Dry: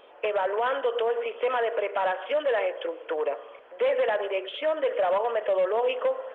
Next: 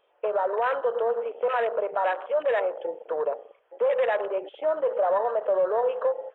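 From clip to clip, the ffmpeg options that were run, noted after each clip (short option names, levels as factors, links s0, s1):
-af "afwtdn=0.0251,equalizer=f=250:t=o:w=0.48:g=-12,volume=1.19"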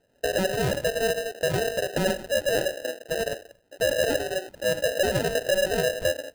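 -af "acrusher=samples=39:mix=1:aa=0.000001"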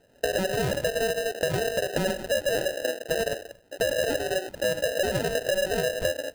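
-af "acompressor=threshold=0.0316:ratio=6,volume=2.11"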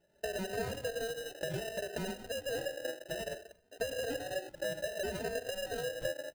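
-filter_complex "[0:a]asplit=2[s0][s1];[s1]adelay=3,afreqshift=0.63[s2];[s0][s2]amix=inputs=2:normalize=1,volume=0.398"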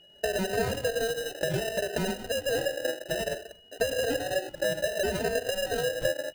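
-af "aeval=exprs='val(0)+0.000708*sin(2*PI*2900*n/s)':c=same,volume=2.66"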